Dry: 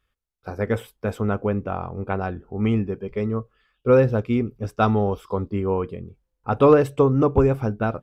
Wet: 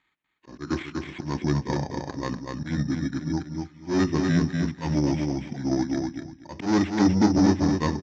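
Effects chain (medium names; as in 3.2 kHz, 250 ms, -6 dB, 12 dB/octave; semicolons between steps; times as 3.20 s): rotating-head pitch shifter -6 st; graphic EQ 250/500/2000 Hz +6/-7/+6 dB; careless resampling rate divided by 8×, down none, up hold; saturation -16.5 dBFS, distortion -10 dB; steep low-pass 6.6 kHz 48 dB/octave; slow attack 169 ms; high-pass 120 Hz 12 dB/octave; peaking EQ 2.1 kHz +6 dB 0.89 oct; feedback delay 244 ms, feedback 20%, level -4 dB; trim +1.5 dB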